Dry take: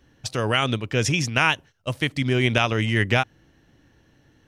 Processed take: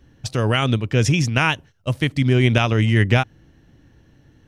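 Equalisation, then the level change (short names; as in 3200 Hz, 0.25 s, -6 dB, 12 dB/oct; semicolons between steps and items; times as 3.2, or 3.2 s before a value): low shelf 300 Hz +8.5 dB; 0.0 dB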